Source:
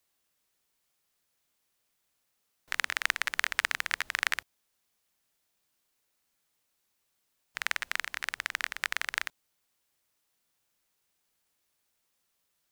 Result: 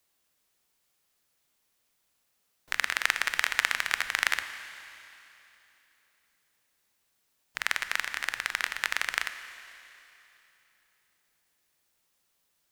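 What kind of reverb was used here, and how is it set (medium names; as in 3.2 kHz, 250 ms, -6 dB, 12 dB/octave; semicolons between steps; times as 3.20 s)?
Schroeder reverb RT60 3.1 s, combs from 26 ms, DRR 10 dB; trim +2.5 dB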